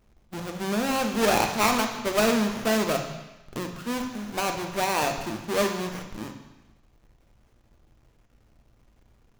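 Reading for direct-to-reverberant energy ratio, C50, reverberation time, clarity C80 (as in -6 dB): 4.0 dB, 7.0 dB, 1.1 s, 9.0 dB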